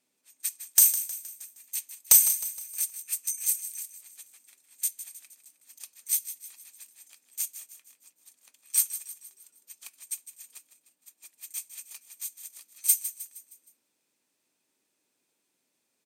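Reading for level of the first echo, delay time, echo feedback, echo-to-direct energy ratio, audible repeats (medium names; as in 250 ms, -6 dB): -12.5 dB, 156 ms, 48%, -11.5 dB, 4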